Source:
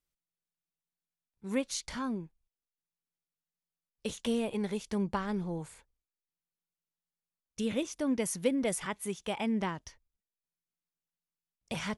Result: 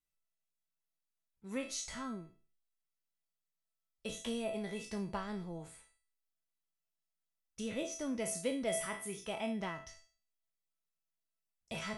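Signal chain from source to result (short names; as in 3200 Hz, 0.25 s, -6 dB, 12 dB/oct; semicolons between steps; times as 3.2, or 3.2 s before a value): spectral trails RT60 0.35 s; resonator 660 Hz, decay 0.44 s, mix 90%; gain +11 dB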